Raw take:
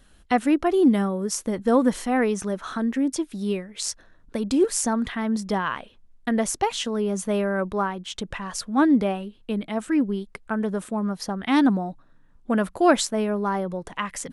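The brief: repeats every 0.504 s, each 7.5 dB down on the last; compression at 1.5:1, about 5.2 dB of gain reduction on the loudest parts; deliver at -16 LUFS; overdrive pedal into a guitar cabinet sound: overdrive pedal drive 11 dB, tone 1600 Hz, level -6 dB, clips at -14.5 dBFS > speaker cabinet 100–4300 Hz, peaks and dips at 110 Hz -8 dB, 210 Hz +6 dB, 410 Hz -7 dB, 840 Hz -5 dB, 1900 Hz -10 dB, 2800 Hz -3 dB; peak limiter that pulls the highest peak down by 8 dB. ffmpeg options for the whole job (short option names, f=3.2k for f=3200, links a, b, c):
-filter_complex "[0:a]acompressor=threshold=-28dB:ratio=1.5,alimiter=limit=-18.5dB:level=0:latency=1,aecho=1:1:504|1008|1512|2016|2520:0.422|0.177|0.0744|0.0312|0.0131,asplit=2[a][b];[b]highpass=f=720:p=1,volume=11dB,asoftclip=type=tanh:threshold=-14.5dB[c];[a][c]amix=inputs=2:normalize=0,lowpass=f=1.6k:p=1,volume=-6dB,highpass=100,equalizer=f=110:t=q:w=4:g=-8,equalizer=f=210:t=q:w=4:g=6,equalizer=f=410:t=q:w=4:g=-7,equalizer=f=840:t=q:w=4:g=-5,equalizer=f=1.9k:t=q:w=4:g=-10,equalizer=f=2.8k:t=q:w=4:g=-3,lowpass=f=4.3k:w=0.5412,lowpass=f=4.3k:w=1.3066,volume=13dB"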